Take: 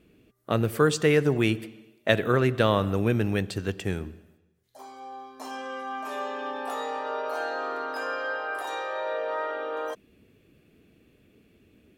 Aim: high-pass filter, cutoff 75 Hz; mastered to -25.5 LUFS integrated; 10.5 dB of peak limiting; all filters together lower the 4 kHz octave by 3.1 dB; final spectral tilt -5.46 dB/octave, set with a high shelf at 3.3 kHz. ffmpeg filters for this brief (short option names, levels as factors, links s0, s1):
-af "highpass=75,highshelf=f=3300:g=7,equalizer=f=4000:t=o:g=-9,volume=1.68,alimiter=limit=0.299:level=0:latency=1"